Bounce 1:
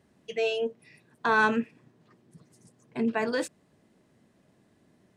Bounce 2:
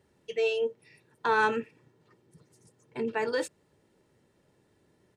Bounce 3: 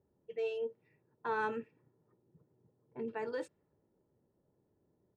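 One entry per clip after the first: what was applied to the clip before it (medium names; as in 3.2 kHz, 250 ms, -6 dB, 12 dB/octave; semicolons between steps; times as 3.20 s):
comb 2.2 ms, depth 50%; trim -2.5 dB
level-controlled noise filter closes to 950 Hz, open at -25.5 dBFS; treble shelf 2.2 kHz -11 dB; trim -8 dB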